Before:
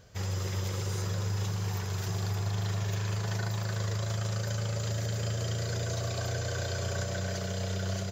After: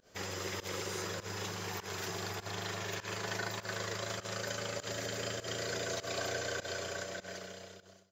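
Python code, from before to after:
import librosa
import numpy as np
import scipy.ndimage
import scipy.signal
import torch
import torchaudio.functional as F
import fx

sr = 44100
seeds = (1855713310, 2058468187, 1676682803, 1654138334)

p1 = fx.fade_out_tail(x, sr, length_s=1.8)
p2 = fx.low_shelf_res(p1, sr, hz=180.0, db=-12.0, q=1.5)
p3 = fx.volume_shaper(p2, sr, bpm=100, per_beat=1, depth_db=-24, release_ms=109.0, shape='fast start')
p4 = fx.dynamic_eq(p3, sr, hz=2100.0, q=0.86, threshold_db=-56.0, ratio=4.0, max_db=5)
p5 = p4 + fx.echo_single(p4, sr, ms=169, db=-20.5, dry=0)
y = p5 * 10.0 ** (-1.5 / 20.0)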